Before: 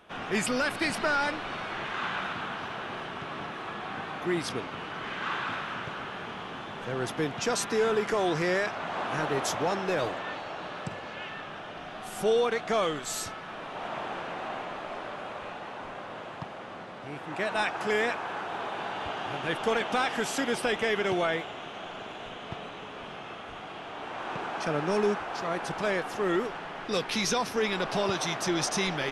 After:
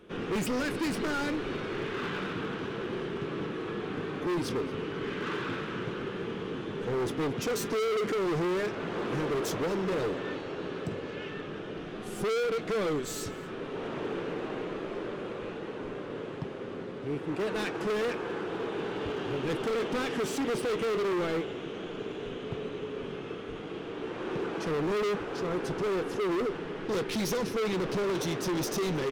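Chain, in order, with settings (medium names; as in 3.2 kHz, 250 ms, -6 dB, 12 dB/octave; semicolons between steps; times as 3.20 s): self-modulated delay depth 0.061 ms; flange 0.33 Hz, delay 5.6 ms, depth 2.1 ms, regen -68%; resonant low shelf 550 Hz +8 dB, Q 3; overload inside the chain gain 29 dB; delay 227 ms -22 dB; trim +1.5 dB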